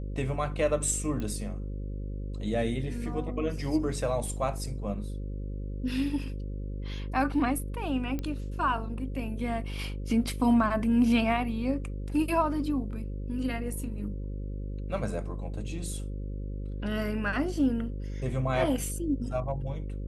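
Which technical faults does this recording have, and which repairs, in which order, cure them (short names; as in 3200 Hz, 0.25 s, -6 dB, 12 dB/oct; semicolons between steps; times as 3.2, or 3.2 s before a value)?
buzz 50 Hz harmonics 11 -35 dBFS
1.2 pop -23 dBFS
8.19 pop -21 dBFS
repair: de-click; de-hum 50 Hz, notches 11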